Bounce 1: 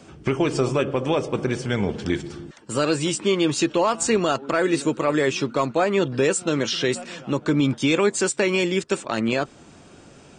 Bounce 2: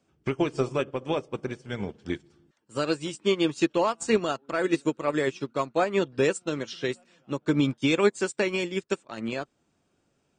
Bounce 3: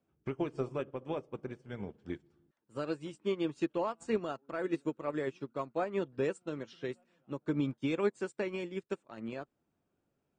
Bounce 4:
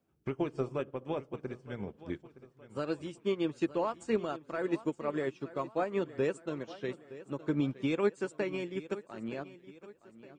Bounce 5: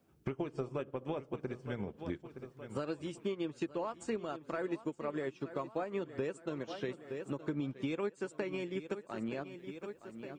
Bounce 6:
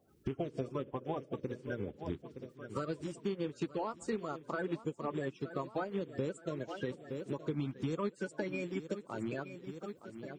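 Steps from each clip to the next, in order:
expander for the loud parts 2.5 to 1, over −32 dBFS
parametric band 6,600 Hz −11 dB 2.6 octaves; level −8.5 dB
repeating echo 917 ms, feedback 44%, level −16.5 dB; level +1.5 dB
downward compressor 4 to 1, threshold −43 dBFS, peak gain reduction 16.5 dB; level +7 dB
spectral magnitudes quantised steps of 30 dB; level +1 dB

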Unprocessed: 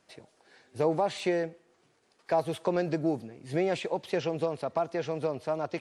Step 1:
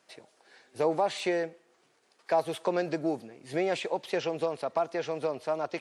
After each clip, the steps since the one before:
high-pass filter 390 Hz 6 dB per octave
level +2 dB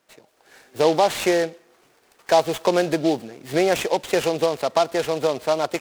automatic gain control gain up to 9.5 dB
short delay modulated by noise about 3,500 Hz, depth 0.04 ms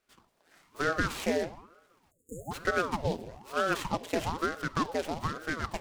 rectangular room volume 3,800 cubic metres, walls furnished, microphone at 0.9 metres
time-frequency box erased 0:02.11–0:02.51, 410–6,700 Hz
ring modulator whose carrier an LFO sweeps 520 Hz, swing 85%, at 1.1 Hz
level −8.5 dB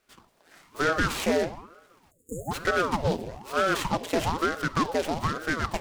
soft clipping −23 dBFS, distortion −14 dB
level +7 dB

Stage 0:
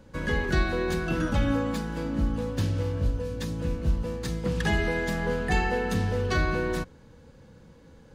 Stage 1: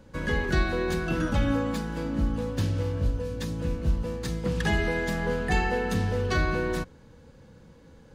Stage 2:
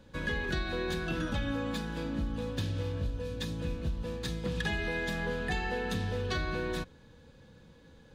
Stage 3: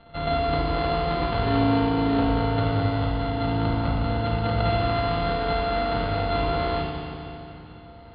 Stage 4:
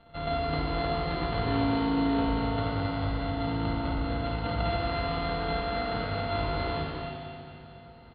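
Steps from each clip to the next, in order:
no processing that can be heard
parametric band 3,600 Hz +9 dB 0.48 octaves; hollow resonant body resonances 1,700/2,500 Hz, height 11 dB, ringing for 90 ms; downward compressor, threshold −24 dBFS, peak gain reduction 6.5 dB; level −4.5 dB
samples sorted by size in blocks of 64 samples; Chebyshev low-pass with heavy ripple 4,400 Hz, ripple 6 dB; feedback delay network reverb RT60 2.9 s, low-frequency decay 1.25×, high-frequency decay 0.95×, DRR −4 dB; level +8 dB
single-tap delay 268 ms −6 dB; level −5.5 dB

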